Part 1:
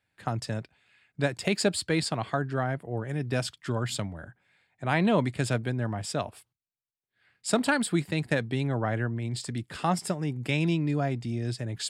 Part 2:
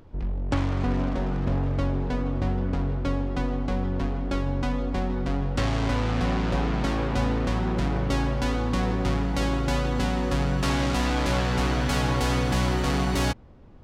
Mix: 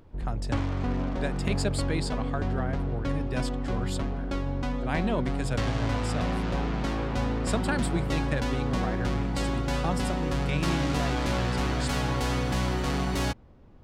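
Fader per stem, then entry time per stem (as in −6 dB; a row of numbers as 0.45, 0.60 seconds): −5.0, −3.5 decibels; 0.00, 0.00 seconds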